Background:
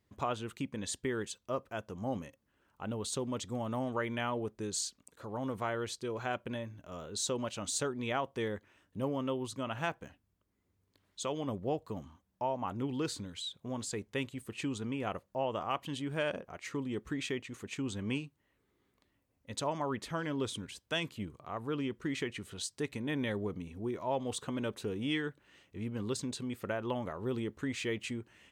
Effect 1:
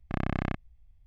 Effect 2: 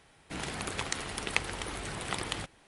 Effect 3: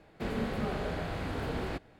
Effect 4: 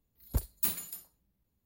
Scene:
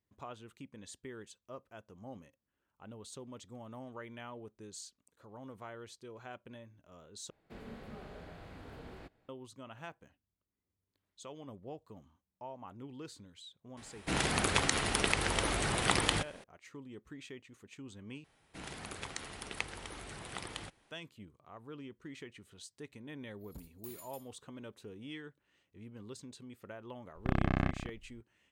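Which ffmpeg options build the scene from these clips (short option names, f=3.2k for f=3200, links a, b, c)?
-filter_complex "[2:a]asplit=2[a][b];[0:a]volume=-12dB[c];[a]alimiter=level_in=12.5dB:limit=-1dB:release=50:level=0:latency=1[d];[4:a]acompressor=threshold=-33dB:ratio=6:attack=3.2:release=140:knee=1:detection=peak[e];[1:a]aecho=1:1:197:0.266[f];[c]asplit=3[g][h][i];[g]atrim=end=7.304[j];[3:a]atrim=end=1.99,asetpts=PTS-STARTPTS,volume=-15dB[k];[h]atrim=start=9.286:end=18.244[l];[b]atrim=end=2.67,asetpts=PTS-STARTPTS,volume=-8.5dB[m];[i]atrim=start=20.906[n];[d]atrim=end=2.67,asetpts=PTS-STARTPTS,volume=-7dB,afade=t=in:d=0.004:c=hsin,afade=t=out:st=2.666:d=0.004:c=hsin,adelay=13770[o];[e]atrim=end=1.65,asetpts=PTS-STARTPTS,volume=-11.5dB,afade=t=in:d=0.004:c=hsin,afade=t=out:st=1.646:d=0.004:c=hsin,adelay=23210[p];[f]atrim=end=1.06,asetpts=PTS-STARTPTS,volume=-0.5dB,afade=t=in:d=0.004:c=hsin,afade=t=out:st=1.056:d=0.004:c=hsin,adelay=27150[q];[j][k]acrossfade=d=0.004:c1=hsin:c2=hsin[r];[r][l]acrossfade=d=0.004:c1=hsin:c2=hsin[s];[s][m]acrossfade=d=0.004:c1=hsin:c2=hsin[t];[t][n]acrossfade=d=0.004:c1=hsin:c2=hsin[u];[u][o][p][q]amix=inputs=4:normalize=0"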